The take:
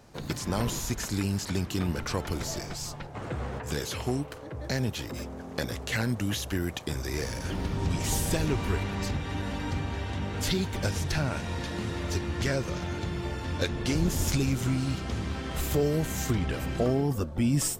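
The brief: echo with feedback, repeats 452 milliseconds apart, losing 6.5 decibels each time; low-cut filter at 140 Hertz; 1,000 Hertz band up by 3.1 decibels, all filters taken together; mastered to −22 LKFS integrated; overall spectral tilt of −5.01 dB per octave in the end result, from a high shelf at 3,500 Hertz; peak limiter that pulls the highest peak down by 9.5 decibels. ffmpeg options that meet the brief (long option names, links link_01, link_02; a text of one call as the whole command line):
ffmpeg -i in.wav -af "highpass=140,equalizer=frequency=1000:width_type=o:gain=4.5,highshelf=frequency=3500:gain=-6,alimiter=limit=-21.5dB:level=0:latency=1,aecho=1:1:452|904|1356|1808|2260|2712:0.473|0.222|0.105|0.0491|0.0231|0.0109,volume=10.5dB" out.wav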